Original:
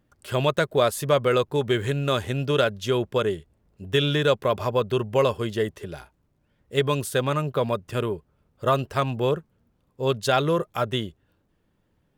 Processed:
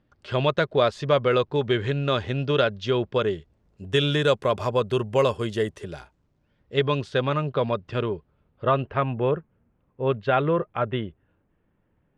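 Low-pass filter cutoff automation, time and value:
low-pass filter 24 dB per octave
0:03.12 5,000 Hz
0:04.05 10,000 Hz
0:05.82 10,000 Hz
0:06.82 4,600 Hz
0:08.15 4,600 Hz
0:09.03 2,600 Hz

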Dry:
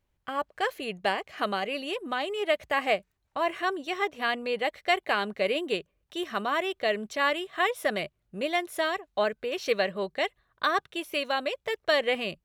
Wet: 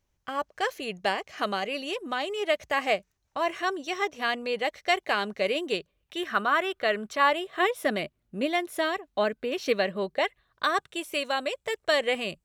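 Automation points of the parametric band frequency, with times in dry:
parametric band +9.5 dB 0.53 octaves
0:05.71 6,000 Hz
0:06.35 1,400 Hz
0:07.10 1,400 Hz
0:07.77 260 Hz
0:10.12 260 Hz
0:10.26 1,600 Hz
0:10.68 8,000 Hz

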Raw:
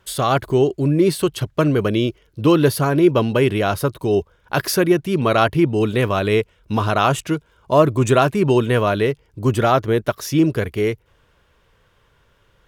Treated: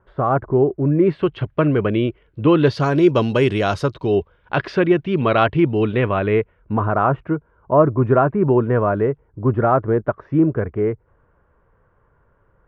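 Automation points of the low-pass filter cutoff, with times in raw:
low-pass filter 24 dB per octave
0:00.70 1,400 Hz
0:01.28 2,700 Hz
0:02.50 2,700 Hz
0:02.93 7,300 Hz
0:03.75 7,300 Hz
0:04.18 3,300 Hz
0:05.76 3,300 Hz
0:06.93 1,500 Hz

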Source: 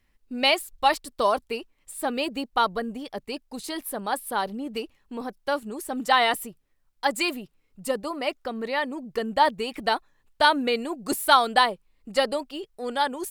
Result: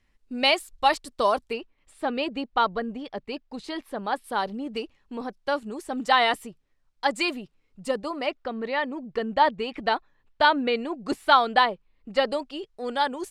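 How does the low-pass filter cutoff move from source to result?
8,800 Hz
from 0:01.53 3,900 Hz
from 0:04.24 6,500 Hz
from 0:08.26 3,800 Hz
from 0:12.27 6,500 Hz

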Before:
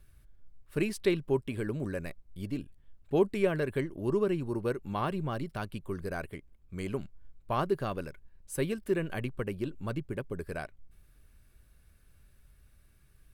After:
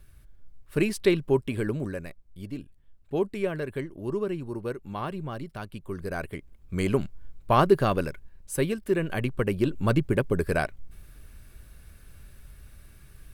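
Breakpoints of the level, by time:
0:01.69 +5.5 dB
0:02.09 −1 dB
0:05.69 −1 dB
0:06.74 +10 dB
0:08.02 +10 dB
0:08.83 +3.5 dB
0:09.91 +12 dB

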